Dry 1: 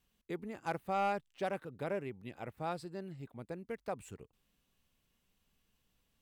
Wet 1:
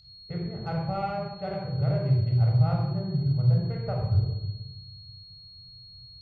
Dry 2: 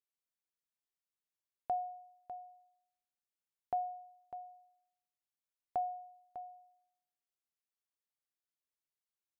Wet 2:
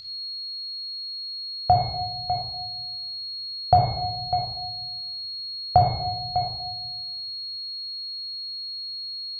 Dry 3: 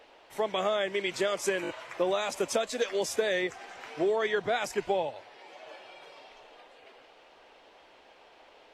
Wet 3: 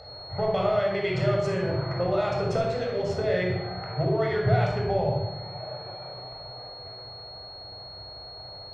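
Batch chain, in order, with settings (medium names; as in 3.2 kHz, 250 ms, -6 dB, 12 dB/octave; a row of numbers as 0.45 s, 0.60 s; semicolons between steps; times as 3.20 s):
local Wiener filter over 15 samples; high-pass 51 Hz; tape spacing loss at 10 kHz 26 dB; gain riding within 3 dB 2 s; whistle 4.3 kHz -52 dBFS; compression, threshold -34 dBFS; resonant low shelf 170 Hz +11.5 dB, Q 3; simulated room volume 3800 m³, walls furnished, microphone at 6.8 m; normalise loudness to -27 LUFS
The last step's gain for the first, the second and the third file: +1.5 dB, +17.0 dB, +7.0 dB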